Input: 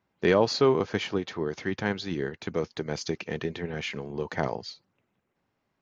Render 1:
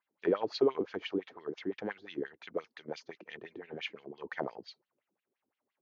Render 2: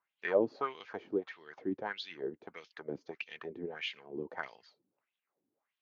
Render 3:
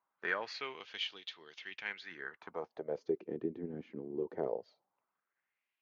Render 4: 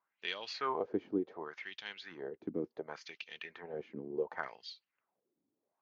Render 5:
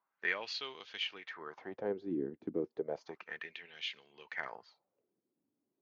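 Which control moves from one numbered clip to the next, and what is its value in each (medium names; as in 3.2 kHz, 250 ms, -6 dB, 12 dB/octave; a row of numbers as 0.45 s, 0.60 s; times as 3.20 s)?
wah-wah, rate: 5.8 Hz, 1.6 Hz, 0.2 Hz, 0.69 Hz, 0.32 Hz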